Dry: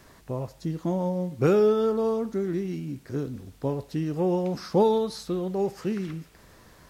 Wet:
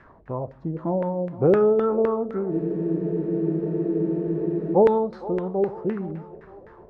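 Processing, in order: two-band feedback delay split 310 Hz, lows 94 ms, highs 463 ms, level -16 dB; LFO low-pass saw down 3.9 Hz 480–1800 Hz; spectral freeze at 2.52 s, 2.23 s

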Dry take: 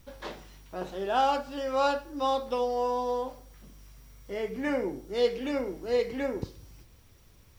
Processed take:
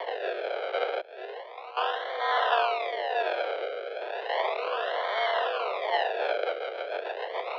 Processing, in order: spectral levelling over time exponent 0.2; 1.01–1.77 s: expander -10 dBFS; decimation with a swept rate 36×, swing 100% 0.34 Hz; mistuned SSB +210 Hz 220–3600 Hz; rotary cabinet horn 1.1 Hz, later 7 Hz, at 5.75 s; Chebyshev shaper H 3 -44 dB, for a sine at -9 dBFS; trim -3.5 dB

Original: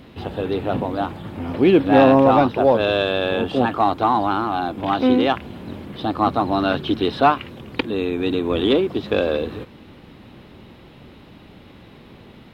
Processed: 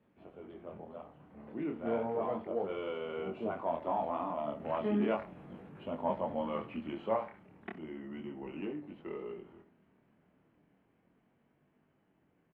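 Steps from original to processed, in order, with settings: Doppler pass-by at 5.12 s, 16 m/s, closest 23 m; three-band isolator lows -13 dB, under 190 Hz, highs -12 dB, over 2.4 kHz; tape echo 71 ms, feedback 25%, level -11 dB, low-pass 3.6 kHz; dynamic bell 320 Hz, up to -5 dB, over -50 dBFS, Q 3.2; pitch shift -3.5 st; chorus 0.34 Hz, delay 20 ms, depth 7.4 ms; trim -9 dB

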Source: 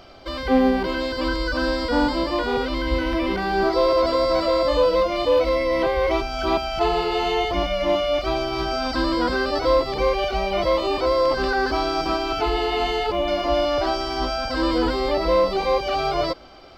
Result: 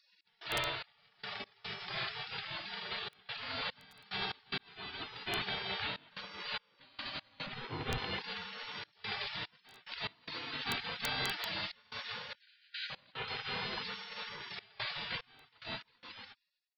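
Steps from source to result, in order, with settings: fade out at the end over 1.82 s; elliptic low-pass 3.7 kHz, stop band 80 dB; spectral gate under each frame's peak -30 dB weak; 4.58–5.57 s: fade in; 7.46–7.98 s: tilt EQ -3 dB/octave; integer overflow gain 30 dB; trance gate "x.xx..x.xxxxxx" 73 bpm -24 dB; 12.35–12.90 s: brick-wall FIR high-pass 1.4 kHz; trim +6.5 dB

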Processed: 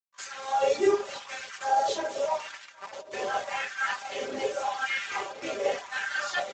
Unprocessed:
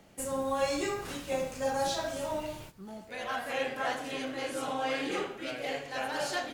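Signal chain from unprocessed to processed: dynamic bell 1.1 kHz, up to -4 dB, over -53 dBFS, Q 8; simulated room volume 150 m³, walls furnished, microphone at 1.2 m; word length cut 6-bit, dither none; reverb removal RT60 0.8 s; two-band feedback delay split 630 Hz, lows 753 ms, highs 232 ms, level -16 dB; harmony voices -4 st -10 dB, -3 st -13 dB, +12 st -18 dB; comb 5.1 ms, depth 66%; LFO high-pass sine 0.86 Hz 370–1600 Hz; trim -2.5 dB; Speex 17 kbps 16 kHz

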